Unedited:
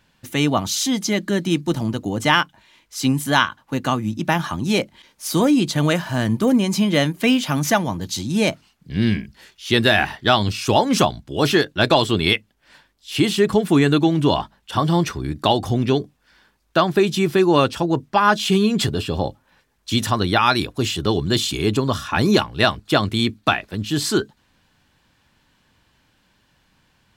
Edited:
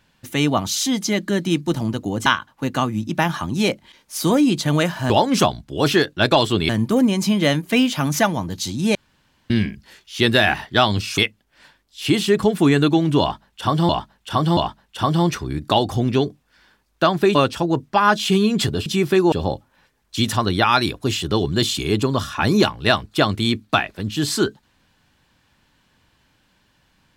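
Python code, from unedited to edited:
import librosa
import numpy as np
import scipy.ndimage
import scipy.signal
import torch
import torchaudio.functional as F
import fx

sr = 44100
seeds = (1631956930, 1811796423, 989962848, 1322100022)

y = fx.edit(x, sr, fx.cut(start_s=2.26, length_s=1.1),
    fx.room_tone_fill(start_s=8.46, length_s=0.55),
    fx.move(start_s=10.69, length_s=1.59, to_s=6.2),
    fx.repeat(start_s=14.31, length_s=0.68, count=3),
    fx.move(start_s=17.09, length_s=0.46, to_s=19.06), tone=tone)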